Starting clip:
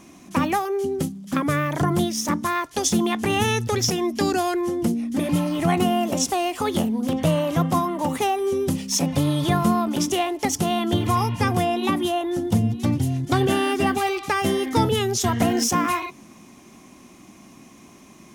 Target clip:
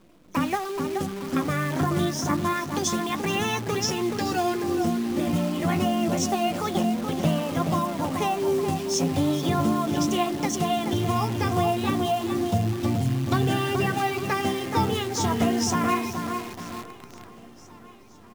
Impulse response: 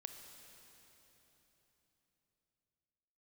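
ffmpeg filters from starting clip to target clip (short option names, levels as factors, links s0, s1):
-filter_complex "[0:a]lowpass=7900,bandreject=f=60:t=h:w=6,bandreject=f=120:t=h:w=6,bandreject=f=180:t=h:w=6,afftfilt=real='re*gte(hypot(re,im),0.00794)':imag='im*gte(hypot(re,im),0.00794)':win_size=1024:overlap=0.75,flanger=delay=5.2:depth=8:regen=35:speed=0.29:shape=triangular,asplit=2[s0][s1];[s1]adelay=427,lowpass=f=1700:p=1,volume=0.562,asplit=2[s2][s3];[s3]adelay=427,lowpass=f=1700:p=1,volume=0.46,asplit=2[s4][s5];[s5]adelay=427,lowpass=f=1700:p=1,volume=0.46,asplit=2[s6][s7];[s7]adelay=427,lowpass=f=1700:p=1,volume=0.46,asplit=2[s8][s9];[s9]adelay=427,lowpass=f=1700:p=1,volume=0.46,asplit=2[s10][s11];[s11]adelay=427,lowpass=f=1700:p=1,volume=0.46[s12];[s2][s4][s6][s8][s10][s12]amix=inputs=6:normalize=0[s13];[s0][s13]amix=inputs=2:normalize=0,acrusher=bits=7:dc=4:mix=0:aa=0.000001,asplit=2[s14][s15];[s15]aecho=0:1:981|1962|2943|3924:0.0794|0.0469|0.0277|0.0163[s16];[s14][s16]amix=inputs=2:normalize=0"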